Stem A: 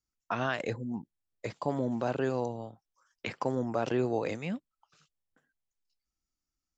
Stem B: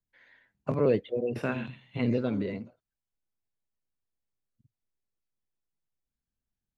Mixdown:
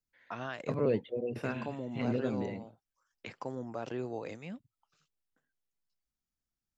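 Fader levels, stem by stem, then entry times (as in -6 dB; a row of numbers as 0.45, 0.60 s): -8.5, -5.0 dB; 0.00, 0.00 s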